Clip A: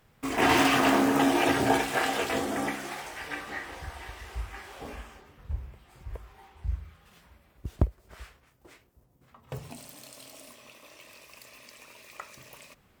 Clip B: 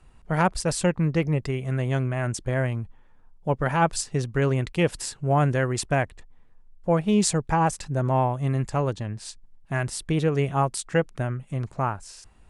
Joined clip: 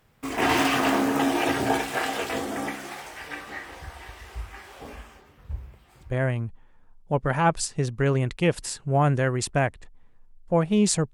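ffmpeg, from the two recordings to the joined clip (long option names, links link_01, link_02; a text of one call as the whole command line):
ffmpeg -i cue0.wav -i cue1.wav -filter_complex "[0:a]apad=whole_dur=11.13,atrim=end=11.13,atrim=end=6.15,asetpts=PTS-STARTPTS[link_01];[1:a]atrim=start=2.37:end=7.49,asetpts=PTS-STARTPTS[link_02];[link_01][link_02]acrossfade=duration=0.14:curve1=tri:curve2=tri" out.wav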